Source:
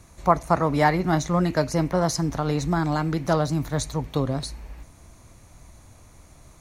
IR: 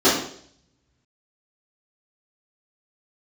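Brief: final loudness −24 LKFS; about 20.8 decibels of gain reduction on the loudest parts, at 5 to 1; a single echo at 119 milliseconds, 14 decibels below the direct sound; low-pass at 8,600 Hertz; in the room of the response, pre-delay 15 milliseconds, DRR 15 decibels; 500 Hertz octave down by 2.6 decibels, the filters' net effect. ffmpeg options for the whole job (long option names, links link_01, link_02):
-filter_complex "[0:a]lowpass=8600,equalizer=frequency=500:width_type=o:gain=-3.5,acompressor=threshold=-39dB:ratio=5,aecho=1:1:119:0.2,asplit=2[link_01][link_02];[1:a]atrim=start_sample=2205,adelay=15[link_03];[link_02][link_03]afir=irnorm=-1:irlink=0,volume=-37.5dB[link_04];[link_01][link_04]amix=inputs=2:normalize=0,volume=18dB"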